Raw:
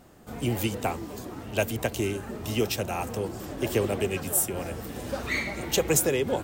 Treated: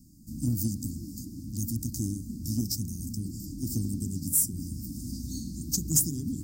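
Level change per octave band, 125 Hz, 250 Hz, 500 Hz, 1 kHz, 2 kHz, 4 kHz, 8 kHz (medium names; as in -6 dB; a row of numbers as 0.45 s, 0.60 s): +1.0 dB, -0.5 dB, -24.5 dB, under -30 dB, under -35 dB, -6.5 dB, +1.0 dB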